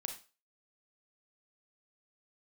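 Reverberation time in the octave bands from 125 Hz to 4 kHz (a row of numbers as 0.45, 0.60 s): 0.25, 0.25, 0.35, 0.35, 0.30, 0.30 s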